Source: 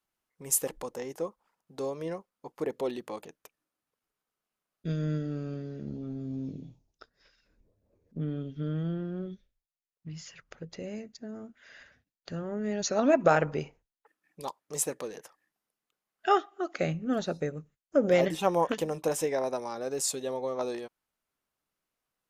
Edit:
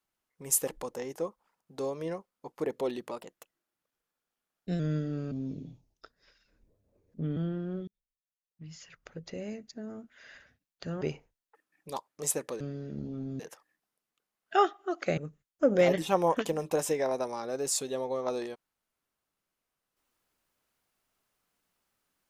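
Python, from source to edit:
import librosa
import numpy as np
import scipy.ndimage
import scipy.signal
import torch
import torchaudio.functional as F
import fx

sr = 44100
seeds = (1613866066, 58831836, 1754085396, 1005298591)

y = fx.edit(x, sr, fx.speed_span(start_s=3.11, length_s=1.87, speed=1.11),
    fx.move(start_s=5.5, length_s=0.79, to_s=15.12),
    fx.cut(start_s=8.34, length_s=0.48),
    fx.fade_in_span(start_s=9.33, length_s=1.4),
    fx.cut(start_s=12.47, length_s=1.06),
    fx.cut(start_s=16.9, length_s=0.6), tone=tone)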